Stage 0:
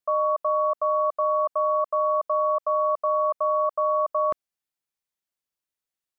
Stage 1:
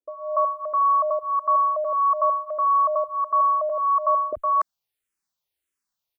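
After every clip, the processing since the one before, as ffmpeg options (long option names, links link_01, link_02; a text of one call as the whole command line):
ffmpeg -i in.wav -filter_complex "[0:a]acrossover=split=180|610[link_01][link_02][link_03];[link_01]adelay=40[link_04];[link_03]adelay=290[link_05];[link_04][link_02][link_05]amix=inputs=3:normalize=0,asplit=2[link_06][link_07];[link_07]afreqshift=-1.6[link_08];[link_06][link_08]amix=inputs=2:normalize=1,volume=8dB" out.wav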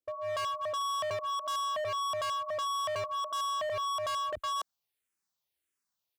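ffmpeg -i in.wav -af "highpass=56,asoftclip=type=hard:threshold=-30dB,volume=-2dB" out.wav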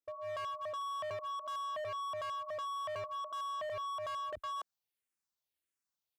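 ffmpeg -i in.wav -filter_complex "[0:a]acrossover=split=2800[link_01][link_02];[link_02]acompressor=threshold=-50dB:ratio=4:attack=1:release=60[link_03];[link_01][link_03]amix=inputs=2:normalize=0,volume=-6dB" out.wav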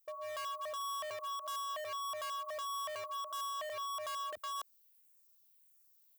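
ffmpeg -i in.wav -af "aemphasis=mode=production:type=riaa,alimiter=level_in=12dB:limit=-24dB:level=0:latency=1:release=52,volume=-12dB,volume=1dB" out.wav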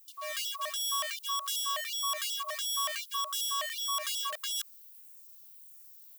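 ffmpeg -i in.wav -af "tiltshelf=frequency=1100:gain=-8.5,acrusher=bits=6:mode=log:mix=0:aa=0.000001,afftfilt=real='re*gte(b*sr/1024,440*pow(2900/440,0.5+0.5*sin(2*PI*2.7*pts/sr)))':imag='im*gte(b*sr/1024,440*pow(2900/440,0.5+0.5*sin(2*PI*2.7*pts/sr)))':win_size=1024:overlap=0.75,volume=6dB" out.wav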